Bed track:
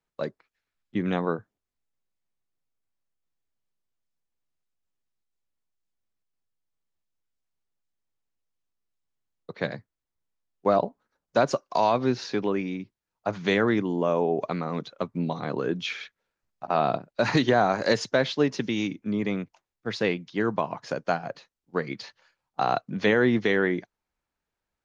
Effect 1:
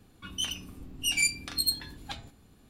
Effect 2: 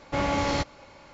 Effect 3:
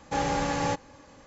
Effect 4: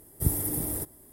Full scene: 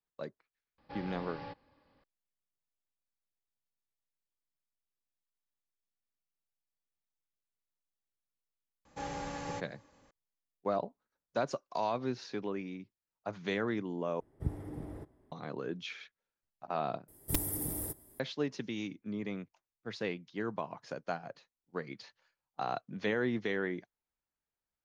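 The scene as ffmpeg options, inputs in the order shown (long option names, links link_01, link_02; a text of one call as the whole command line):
ffmpeg -i bed.wav -i cue0.wav -i cue1.wav -i cue2.wav -i cue3.wav -filter_complex "[3:a]asplit=2[link_01][link_02];[4:a]asplit=2[link_03][link_04];[0:a]volume=-11dB[link_05];[link_01]aresample=11025,aresample=44100[link_06];[link_03]lowpass=2000[link_07];[link_04]aeval=exprs='(mod(5.31*val(0)+1,2)-1)/5.31':channel_layout=same[link_08];[link_05]asplit=3[link_09][link_10][link_11];[link_09]atrim=end=14.204[link_12];[link_07]atrim=end=1.12,asetpts=PTS-STARTPTS,volume=-8.5dB[link_13];[link_10]atrim=start=15.316:end=17.084[link_14];[link_08]atrim=end=1.12,asetpts=PTS-STARTPTS,volume=-6.5dB[link_15];[link_11]atrim=start=18.196[link_16];[link_06]atrim=end=1.26,asetpts=PTS-STARTPTS,volume=-17.5dB,afade=type=in:duration=0.004:curve=hsin,afade=type=out:start_time=1.256:duration=0.004:curve=hsin,adelay=780[link_17];[link_02]atrim=end=1.26,asetpts=PTS-STARTPTS,volume=-12.5dB,afade=type=in:duration=0.004:curve=hsin,afade=type=out:start_time=1.256:duration=0.004:curve=hsin,adelay=8850[link_18];[link_12][link_13]acrossfade=duration=0.004:curve1=hsin:curve2=hsin[link_19];[link_19][link_14]acrossfade=duration=0.004:curve1=hsin:curve2=hsin[link_20];[link_20][link_15]acrossfade=duration=0.004:curve1=hsin:curve2=hsin[link_21];[link_21][link_16]acrossfade=duration=0.004:curve1=hsin:curve2=hsin[link_22];[link_22][link_17][link_18]amix=inputs=3:normalize=0" out.wav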